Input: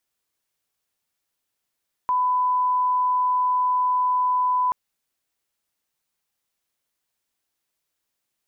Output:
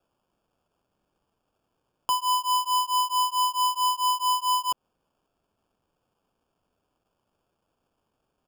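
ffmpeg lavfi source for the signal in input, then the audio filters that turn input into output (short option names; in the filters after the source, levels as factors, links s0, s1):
-f lavfi -i "sine=f=1000:d=2.63:r=44100,volume=0.06dB"
-af "aecho=1:1:5.9:0.88,alimiter=limit=0.0841:level=0:latency=1:release=124,acrusher=samples=22:mix=1:aa=0.000001"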